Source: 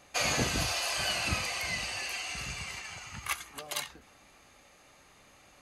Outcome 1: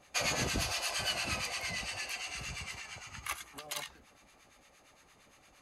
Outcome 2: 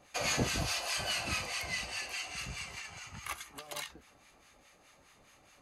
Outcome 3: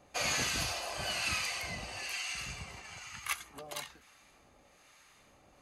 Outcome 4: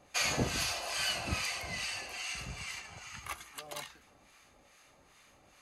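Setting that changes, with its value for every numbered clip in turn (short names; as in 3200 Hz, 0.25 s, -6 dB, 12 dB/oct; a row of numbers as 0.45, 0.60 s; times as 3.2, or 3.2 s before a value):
harmonic tremolo, rate: 8.7, 4.8, 1.1, 2.4 Hz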